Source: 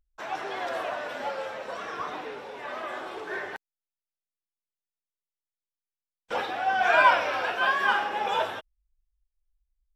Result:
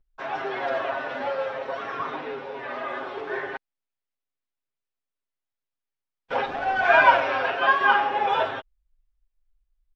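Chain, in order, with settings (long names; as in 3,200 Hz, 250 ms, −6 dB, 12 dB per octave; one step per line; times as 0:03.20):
comb filter 7.4 ms, depth 90%
0:06.46–0:07.21: slack as between gear wheels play −29.5 dBFS
high-frequency loss of the air 210 metres
level +2.5 dB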